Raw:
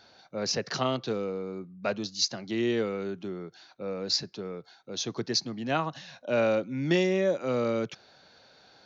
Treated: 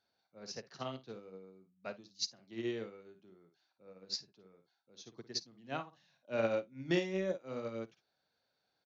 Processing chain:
on a send: ambience of single reflections 53 ms −8 dB, 68 ms −16.5 dB
on the sum: expander for the loud parts 2.5 to 1, over −34 dBFS
level −6 dB

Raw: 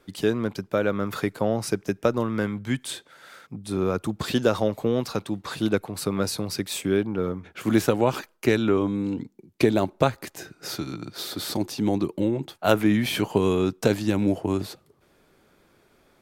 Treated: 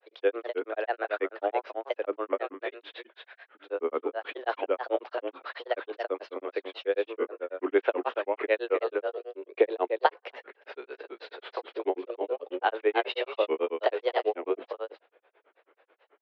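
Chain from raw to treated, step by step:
single-tap delay 273 ms −5.5 dB
single-sideband voice off tune +110 Hz 290–3,100 Hz
granular cloud, grains 9.2 per second, spray 38 ms, pitch spread up and down by 3 semitones

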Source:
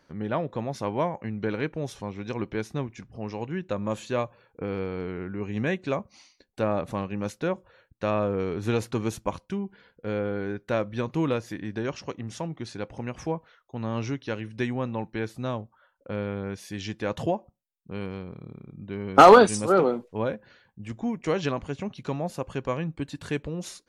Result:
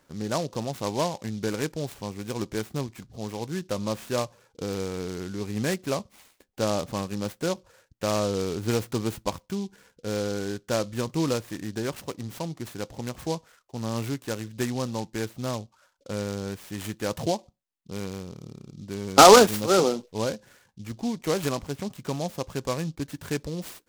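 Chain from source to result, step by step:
short delay modulated by noise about 4,500 Hz, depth 0.066 ms

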